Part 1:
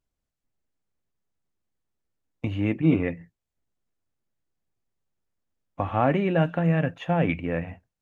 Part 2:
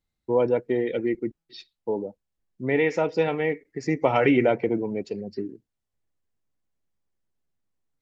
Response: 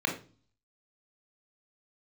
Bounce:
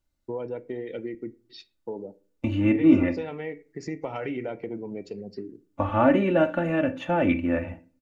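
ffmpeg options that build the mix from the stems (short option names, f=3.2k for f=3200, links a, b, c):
-filter_complex "[0:a]aecho=1:1:3.4:0.85,volume=0.5dB,asplit=3[a][b][c];[b]volume=-18.5dB[d];[1:a]acompressor=threshold=-29dB:ratio=3,volume=-2.5dB,asplit=2[e][f];[f]volume=-23dB[g];[c]apad=whole_len=353324[h];[e][h]sidechaincompress=threshold=-25dB:ratio=8:attack=16:release=119[i];[2:a]atrim=start_sample=2205[j];[d][g]amix=inputs=2:normalize=0[k];[k][j]afir=irnorm=-1:irlink=0[l];[a][i][l]amix=inputs=3:normalize=0"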